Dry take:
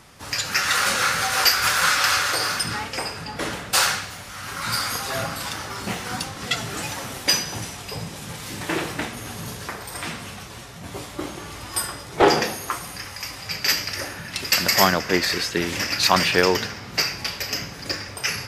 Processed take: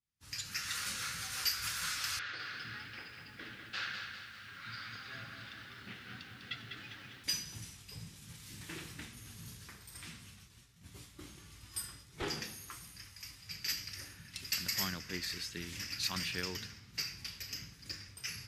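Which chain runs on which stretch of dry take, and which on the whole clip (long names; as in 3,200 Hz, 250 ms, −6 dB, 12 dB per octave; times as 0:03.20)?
0:02.19–0:07.24: loudspeaker in its box 120–3,800 Hz, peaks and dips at 170 Hz −8 dB, 970 Hz −6 dB, 1,600 Hz +7 dB + feedback echo at a low word length 200 ms, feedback 55%, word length 8 bits, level −5.5 dB
whole clip: downward expander −33 dBFS; guitar amp tone stack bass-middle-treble 6-0-2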